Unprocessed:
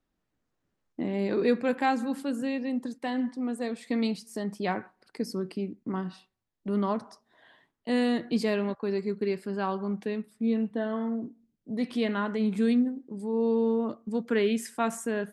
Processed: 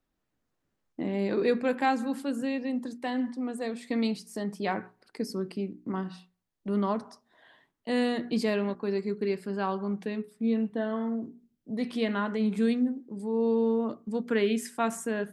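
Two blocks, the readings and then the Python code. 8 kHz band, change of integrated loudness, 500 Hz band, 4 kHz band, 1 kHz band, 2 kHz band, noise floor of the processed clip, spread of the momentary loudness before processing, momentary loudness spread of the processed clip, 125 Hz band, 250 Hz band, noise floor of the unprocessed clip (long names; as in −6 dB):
0.0 dB, −0.5 dB, −0.5 dB, 0.0 dB, 0.0 dB, 0.0 dB, −80 dBFS, 9 LU, 9 LU, −0.5 dB, −1.0 dB, −81 dBFS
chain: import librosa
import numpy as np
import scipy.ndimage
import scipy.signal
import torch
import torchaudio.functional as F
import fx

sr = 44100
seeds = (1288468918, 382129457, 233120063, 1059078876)

y = fx.hum_notches(x, sr, base_hz=60, count=7)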